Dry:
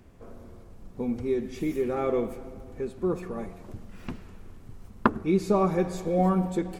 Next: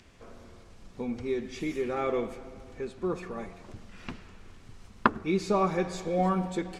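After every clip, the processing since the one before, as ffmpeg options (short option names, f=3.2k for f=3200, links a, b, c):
-filter_complex "[0:a]lowpass=6.5k,tiltshelf=f=970:g=-5,acrossover=split=1900[a][b];[b]acompressor=mode=upward:threshold=-58dB:ratio=2.5[c];[a][c]amix=inputs=2:normalize=0"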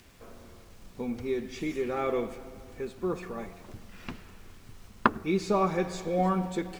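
-af "acrusher=bits=9:mix=0:aa=0.000001"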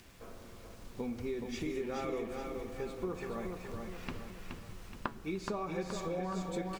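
-af "acompressor=threshold=-34dB:ratio=6,flanger=delay=5.9:depth=2.1:regen=-82:speed=0.43:shape=sinusoidal,aecho=1:1:423|846|1269|1692|2115|2538:0.562|0.264|0.124|0.0584|0.0274|0.0129,volume=3.5dB"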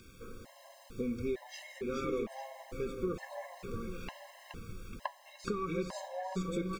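-af "afftfilt=real='re*gt(sin(2*PI*1.1*pts/sr)*(1-2*mod(floor(b*sr/1024/540),2)),0)':imag='im*gt(sin(2*PI*1.1*pts/sr)*(1-2*mod(floor(b*sr/1024/540),2)),0)':win_size=1024:overlap=0.75,volume=3dB"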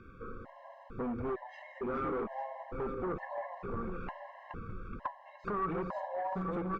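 -af "asoftclip=type=hard:threshold=-36dB,lowpass=f=1.3k:t=q:w=2,volume=2.5dB" -ar 48000 -c:a libopus -b:a 96k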